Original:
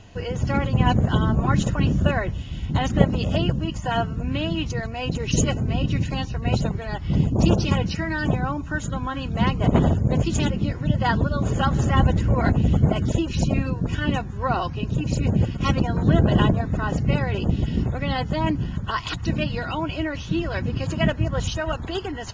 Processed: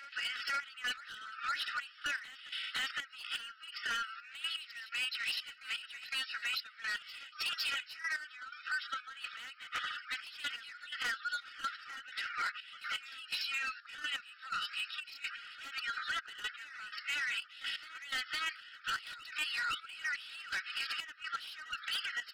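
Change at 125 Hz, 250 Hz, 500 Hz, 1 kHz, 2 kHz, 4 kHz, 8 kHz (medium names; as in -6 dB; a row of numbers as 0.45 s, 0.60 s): under -40 dB, under -40 dB, -36.5 dB, -15.0 dB, -4.5 dB, -4.0 dB, no reading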